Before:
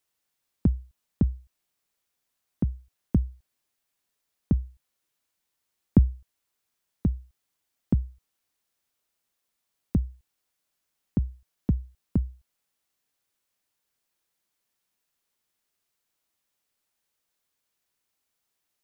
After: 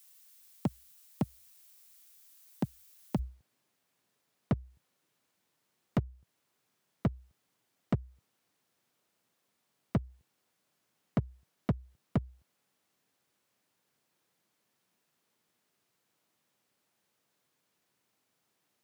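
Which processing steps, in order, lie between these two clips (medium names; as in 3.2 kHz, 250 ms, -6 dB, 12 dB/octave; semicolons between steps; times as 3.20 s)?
high-pass 120 Hz 24 dB/octave; tilt EQ +4 dB/octave, from 3.18 s -2 dB/octave; compression 4:1, threshold -27 dBFS, peak gain reduction 15.5 dB; overload inside the chain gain 29 dB; trim +6.5 dB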